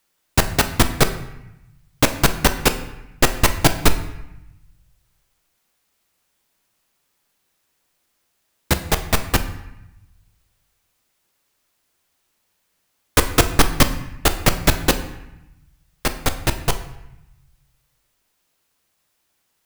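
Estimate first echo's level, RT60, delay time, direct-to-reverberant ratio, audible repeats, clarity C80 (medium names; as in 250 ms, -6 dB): no echo, 0.90 s, no echo, 8.0 dB, no echo, 13.5 dB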